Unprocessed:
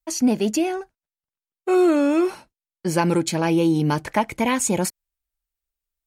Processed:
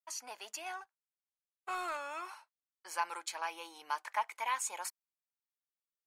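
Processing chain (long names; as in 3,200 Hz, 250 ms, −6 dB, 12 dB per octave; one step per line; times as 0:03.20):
four-pole ladder high-pass 850 Hz, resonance 45%
0:00.66–0:01.97: leveller curve on the samples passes 1
level −5 dB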